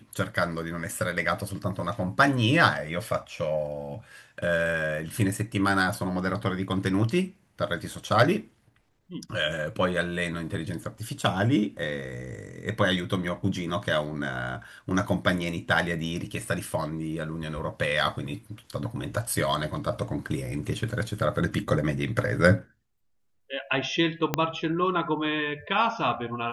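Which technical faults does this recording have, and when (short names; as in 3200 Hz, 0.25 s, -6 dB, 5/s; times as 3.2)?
24.34 pop -8 dBFS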